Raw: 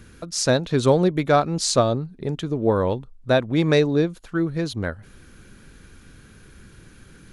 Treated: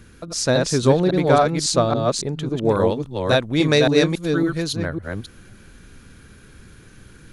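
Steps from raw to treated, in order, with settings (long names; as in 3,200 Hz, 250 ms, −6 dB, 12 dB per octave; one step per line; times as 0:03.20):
delay that plays each chunk backwards 277 ms, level −2.5 dB
0:02.65–0:04.73: high-shelf EQ 3,000 Hz +10 dB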